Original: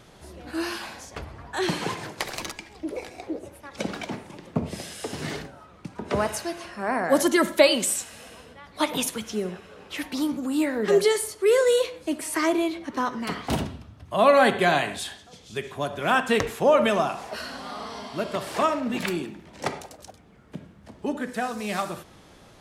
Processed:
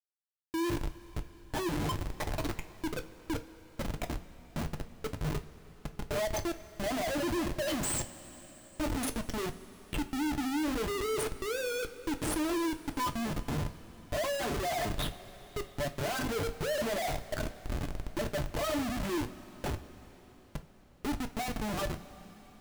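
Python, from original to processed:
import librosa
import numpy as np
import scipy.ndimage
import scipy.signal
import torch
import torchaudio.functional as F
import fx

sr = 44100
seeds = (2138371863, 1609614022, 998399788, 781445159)

y = fx.spec_expand(x, sr, power=3.0)
y = fx.schmitt(y, sr, flips_db=-30.0)
y = fx.rev_double_slope(y, sr, seeds[0], early_s=0.22, late_s=4.9, knee_db=-20, drr_db=6.0)
y = y * 10.0 ** (-6.0 / 20.0)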